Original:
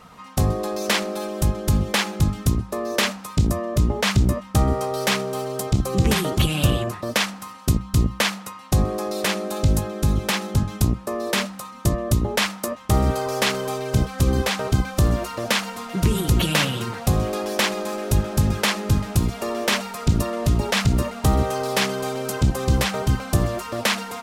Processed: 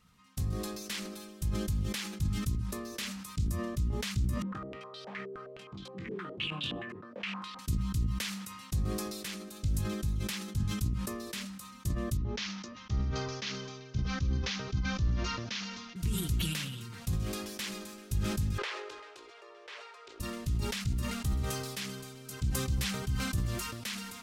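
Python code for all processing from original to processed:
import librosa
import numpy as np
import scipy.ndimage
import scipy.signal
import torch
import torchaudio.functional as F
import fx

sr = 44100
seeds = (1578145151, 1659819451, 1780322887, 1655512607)

y = fx.chain(x, sr, fx.highpass(hz=270.0, slope=12),
    fx.doubler(ms=21.0, db=-5),
    fx.filter_held_lowpass(hz=9.6, low_hz=420.0, high_hz=3600.0), at=(4.42, 7.59))
y = fx.chain(y, sr, fx.steep_lowpass(hz=6400.0, slope=72),
    fx.band_widen(depth_pct=40), at=(12.17, 15.96))
y = fx.chain(y, sr, fx.ellip_highpass(hz=410.0, order=4, stop_db=50),
    fx.spacing_loss(db_at_10k=30),
    fx.env_flatten(amount_pct=70), at=(18.58, 20.2))
y = fx.tone_stack(y, sr, knobs='6-0-2')
y = fx.sustainer(y, sr, db_per_s=34.0)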